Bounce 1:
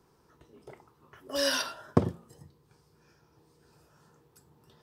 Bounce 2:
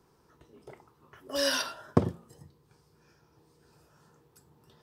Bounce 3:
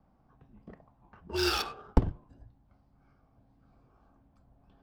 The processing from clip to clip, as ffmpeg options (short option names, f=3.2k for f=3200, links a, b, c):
-af anull
-af "afreqshift=-200,adynamicsmooth=sensitivity=8:basefreq=1.7k"